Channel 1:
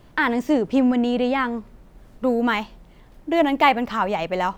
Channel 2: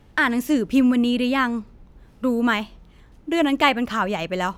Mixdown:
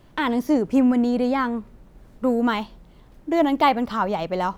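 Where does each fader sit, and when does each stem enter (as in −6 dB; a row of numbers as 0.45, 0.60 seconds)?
−2.5, −10.0 decibels; 0.00, 0.00 seconds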